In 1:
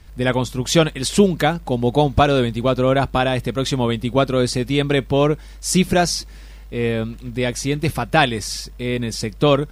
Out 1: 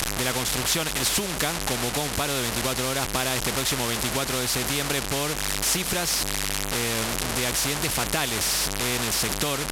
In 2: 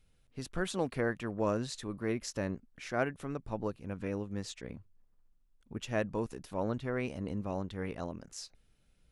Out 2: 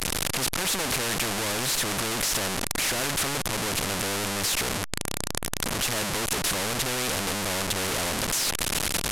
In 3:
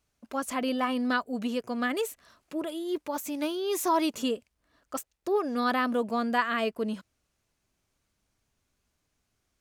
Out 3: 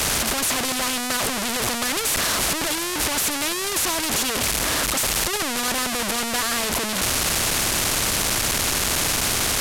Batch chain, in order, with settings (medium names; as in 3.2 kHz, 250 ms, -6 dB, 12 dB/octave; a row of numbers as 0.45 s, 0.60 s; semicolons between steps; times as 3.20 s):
one-bit delta coder 64 kbps, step -20 dBFS; compression, threshold -19 dBFS; spectrum-flattening compressor 2:1; peak normalisation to -9 dBFS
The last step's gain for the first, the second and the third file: +0.5 dB, +6.5 dB, +4.0 dB